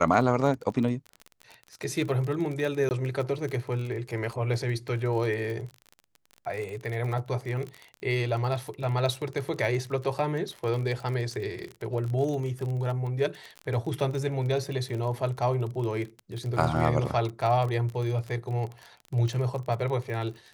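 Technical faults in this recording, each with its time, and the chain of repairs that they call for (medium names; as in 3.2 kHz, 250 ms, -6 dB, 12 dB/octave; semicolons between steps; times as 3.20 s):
crackle 32 per s -32 dBFS
2.89–2.91 s: dropout 19 ms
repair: de-click; interpolate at 2.89 s, 19 ms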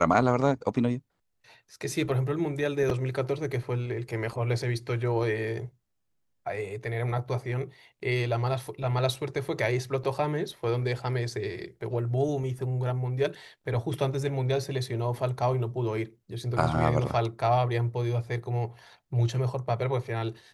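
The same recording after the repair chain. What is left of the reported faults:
nothing left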